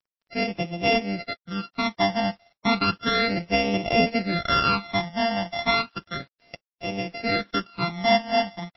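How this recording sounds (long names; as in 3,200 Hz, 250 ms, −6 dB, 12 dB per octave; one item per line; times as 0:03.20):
a buzz of ramps at a fixed pitch in blocks of 64 samples
phaser sweep stages 12, 0.33 Hz, lowest notch 410–1,400 Hz
a quantiser's noise floor 10 bits, dither none
MP3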